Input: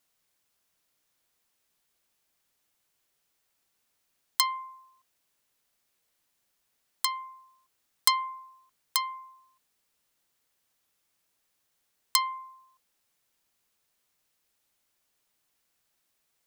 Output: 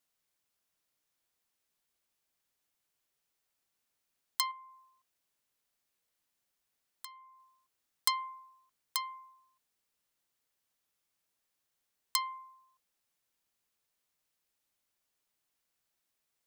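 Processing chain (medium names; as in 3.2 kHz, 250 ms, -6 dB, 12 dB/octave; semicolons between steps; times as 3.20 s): 4.51–7.40 s: compression 2.5:1, threshold -44 dBFS, peak gain reduction 14.5 dB; trim -7 dB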